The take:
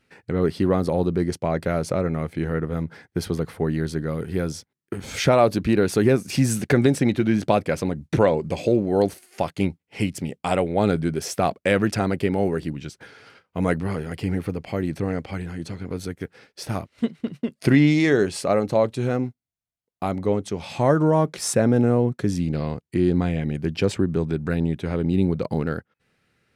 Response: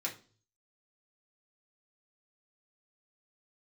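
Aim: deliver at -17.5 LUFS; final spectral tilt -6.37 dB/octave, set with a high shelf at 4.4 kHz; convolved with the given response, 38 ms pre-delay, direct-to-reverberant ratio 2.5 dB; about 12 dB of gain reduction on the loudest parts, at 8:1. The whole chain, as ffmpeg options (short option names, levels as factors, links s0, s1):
-filter_complex "[0:a]highshelf=f=4400:g=-6.5,acompressor=threshold=0.0562:ratio=8,asplit=2[s0][s1];[1:a]atrim=start_sample=2205,adelay=38[s2];[s1][s2]afir=irnorm=-1:irlink=0,volume=0.562[s3];[s0][s3]amix=inputs=2:normalize=0,volume=4.22"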